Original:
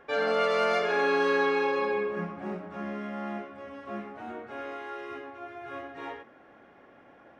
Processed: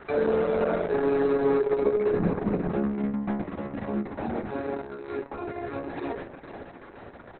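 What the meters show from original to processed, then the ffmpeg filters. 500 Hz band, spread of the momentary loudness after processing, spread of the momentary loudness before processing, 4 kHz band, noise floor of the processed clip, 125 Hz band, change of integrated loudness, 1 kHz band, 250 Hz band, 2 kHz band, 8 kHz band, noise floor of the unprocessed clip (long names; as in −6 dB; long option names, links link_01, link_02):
+4.0 dB, 18 LU, 16 LU, below −10 dB, −47 dBFS, +11.5 dB, +2.0 dB, −3.0 dB, +8.5 dB, −7.5 dB, can't be measured, −56 dBFS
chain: -filter_complex "[0:a]bandreject=frequency=122:width_type=h:width=4,bandreject=frequency=244:width_type=h:width=4,bandreject=frequency=366:width_type=h:width=4,bandreject=frequency=488:width_type=h:width=4,bandreject=frequency=610:width_type=h:width=4,bandreject=frequency=732:width_type=h:width=4,bandreject=frequency=854:width_type=h:width=4,bandreject=frequency=976:width_type=h:width=4,bandreject=frequency=1098:width_type=h:width=4,bandreject=frequency=1220:width_type=h:width=4,bandreject=frequency=1342:width_type=h:width=4,bandreject=frequency=1464:width_type=h:width=4,acrossover=split=570[link_01][link_02];[link_01]asoftclip=type=tanh:threshold=-29dB[link_03];[link_02]acompressor=threshold=-46dB:ratio=5[link_04];[link_03][link_04]amix=inputs=2:normalize=0,aexciter=amount=12.4:drive=8:freq=4900,lowshelf=frequency=200:gain=11,asplit=2[link_05][link_06];[link_06]adelay=455,lowpass=frequency=4100:poles=1,volume=-11dB,asplit=2[link_07][link_08];[link_08]adelay=455,lowpass=frequency=4100:poles=1,volume=0.45,asplit=2[link_09][link_10];[link_10]adelay=455,lowpass=frequency=4100:poles=1,volume=0.45,asplit=2[link_11][link_12];[link_12]adelay=455,lowpass=frequency=4100:poles=1,volume=0.45,asplit=2[link_13][link_14];[link_14]adelay=455,lowpass=frequency=4100:poles=1,volume=0.45[link_15];[link_07][link_09][link_11][link_13][link_15]amix=inputs=5:normalize=0[link_16];[link_05][link_16]amix=inputs=2:normalize=0,acrossover=split=3300[link_17][link_18];[link_18]acompressor=threshold=-57dB:ratio=4:attack=1:release=60[link_19];[link_17][link_19]amix=inputs=2:normalize=0,volume=8.5dB" -ar 48000 -c:a libopus -b:a 6k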